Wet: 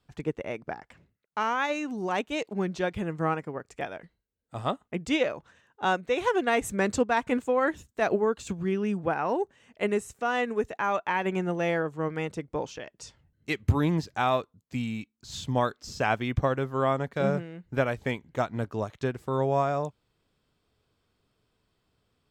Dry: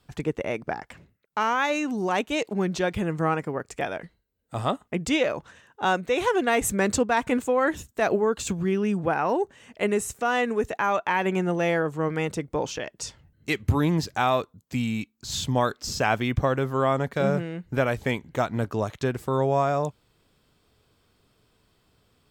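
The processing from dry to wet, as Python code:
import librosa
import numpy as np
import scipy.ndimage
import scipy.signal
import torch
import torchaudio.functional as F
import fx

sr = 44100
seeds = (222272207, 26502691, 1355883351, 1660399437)

y = fx.high_shelf(x, sr, hz=9700.0, db=-8.5)
y = fx.upward_expand(y, sr, threshold_db=-33.0, expansion=1.5)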